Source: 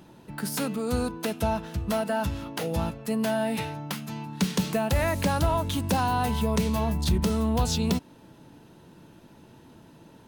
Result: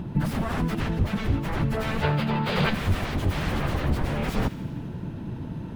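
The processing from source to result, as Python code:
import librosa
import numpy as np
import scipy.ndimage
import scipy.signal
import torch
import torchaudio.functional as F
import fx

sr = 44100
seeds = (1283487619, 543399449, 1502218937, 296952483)

p1 = 10.0 ** (-32.0 / 20.0) * (np.abs((x / 10.0 ** (-32.0 / 20.0) + 3.0) % 4.0 - 2.0) - 1.0)
p2 = fx.bass_treble(p1, sr, bass_db=14, treble_db=-13)
p3 = fx.rider(p2, sr, range_db=4, speed_s=0.5)
p4 = fx.spec_box(p3, sr, start_s=3.63, length_s=1.18, low_hz=350.0, high_hz=5000.0, gain_db=11)
p5 = fx.stretch_vocoder_free(p4, sr, factor=0.56)
p6 = p5 + fx.echo_wet_highpass(p5, sr, ms=83, feedback_pct=69, hz=1600.0, wet_db=-14.0, dry=0)
y = p6 * 10.0 ** (8.5 / 20.0)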